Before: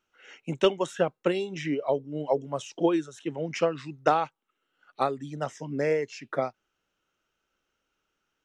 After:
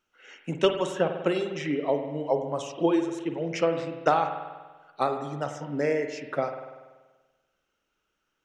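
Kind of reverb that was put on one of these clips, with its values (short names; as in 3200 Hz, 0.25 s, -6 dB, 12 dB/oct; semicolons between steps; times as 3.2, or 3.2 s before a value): spring tank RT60 1.3 s, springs 48 ms, chirp 60 ms, DRR 6 dB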